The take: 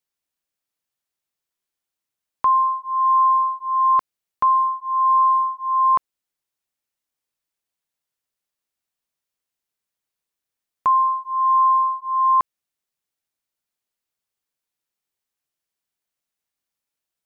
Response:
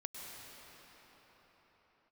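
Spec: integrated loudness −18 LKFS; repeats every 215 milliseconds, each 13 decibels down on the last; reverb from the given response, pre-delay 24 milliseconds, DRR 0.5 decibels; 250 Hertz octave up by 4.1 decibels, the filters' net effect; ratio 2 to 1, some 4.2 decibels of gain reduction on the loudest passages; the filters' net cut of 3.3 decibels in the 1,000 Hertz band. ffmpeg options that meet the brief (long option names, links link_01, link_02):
-filter_complex "[0:a]equalizer=frequency=250:width_type=o:gain=5.5,equalizer=frequency=1000:width_type=o:gain=-3.5,acompressor=threshold=-25dB:ratio=2,aecho=1:1:215|430|645:0.224|0.0493|0.0108,asplit=2[link_01][link_02];[1:a]atrim=start_sample=2205,adelay=24[link_03];[link_02][link_03]afir=irnorm=-1:irlink=0,volume=0.5dB[link_04];[link_01][link_04]amix=inputs=2:normalize=0,volume=4.5dB"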